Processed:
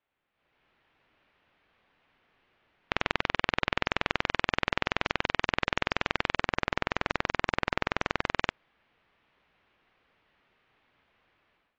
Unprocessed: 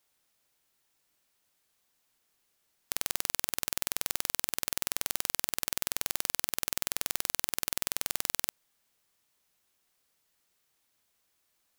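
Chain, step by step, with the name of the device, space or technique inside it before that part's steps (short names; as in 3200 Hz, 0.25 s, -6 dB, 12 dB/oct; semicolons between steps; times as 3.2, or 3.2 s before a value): 6.39–8.37 dynamic EQ 3100 Hz, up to -5 dB, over -55 dBFS, Q 1.3; action camera in a waterproof case (LPF 2800 Hz 24 dB/oct; AGC gain up to 15.5 dB; gain -2 dB; AAC 48 kbps 16000 Hz)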